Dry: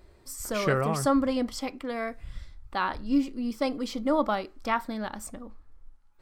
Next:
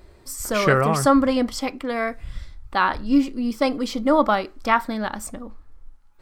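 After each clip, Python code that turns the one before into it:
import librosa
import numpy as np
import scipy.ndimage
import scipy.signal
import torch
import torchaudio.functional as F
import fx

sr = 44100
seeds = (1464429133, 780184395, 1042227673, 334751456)

y = fx.dynamic_eq(x, sr, hz=1500.0, q=0.86, threshold_db=-38.0, ratio=4.0, max_db=3)
y = F.gain(torch.from_numpy(y), 6.5).numpy()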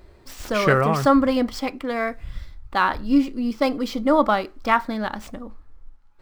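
y = scipy.signal.medfilt(x, 5)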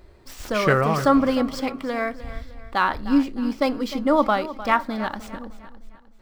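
y = fx.echo_feedback(x, sr, ms=305, feedback_pct=43, wet_db=-15)
y = F.gain(torch.from_numpy(y), -1.0).numpy()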